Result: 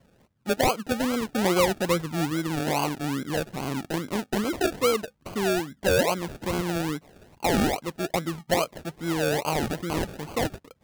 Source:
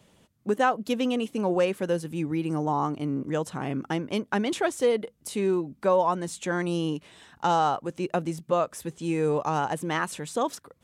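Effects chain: 1.34–2.30 s: peaking EQ 180 Hz +3.5 dB 2.9 oct; decimation with a swept rate 34×, swing 60% 2.4 Hz

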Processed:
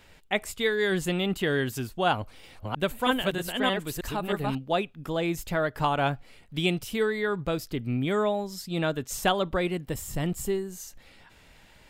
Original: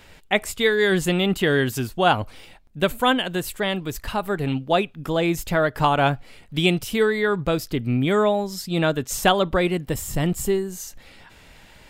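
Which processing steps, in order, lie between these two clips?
2.12–4.55 s: chunks repeated in reverse 315 ms, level -1 dB; trim -6.5 dB

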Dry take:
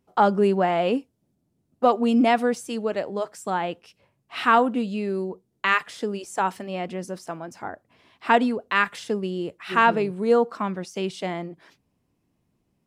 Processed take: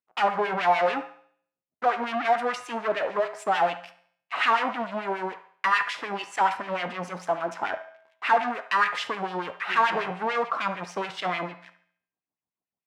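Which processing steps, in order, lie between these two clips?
bass shelf 200 Hz +9.5 dB; peak limiter -10.5 dBFS, peak gain reduction 5.5 dB; waveshaping leveller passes 5; LFO band-pass sine 6.8 Hz 740–2500 Hz; feedback comb 59 Hz, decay 0.6 s, harmonics odd, mix 60%; feedback echo behind a band-pass 71 ms, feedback 38%, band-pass 1.2 kHz, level -12 dB; trim +4.5 dB

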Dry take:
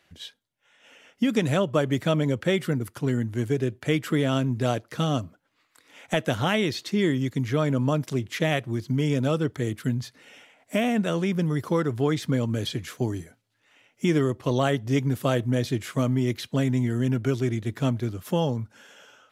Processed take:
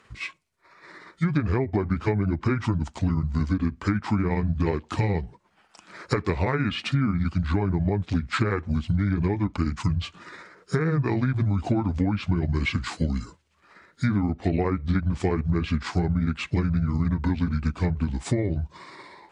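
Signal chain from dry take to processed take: rotating-head pitch shifter -7 st; low-pass that closes with the level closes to 2 kHz, closed at -19.5 dBFS; compression, threshold -28 dBFS, peak gain reduction 10.5 dB; trim +8 dB

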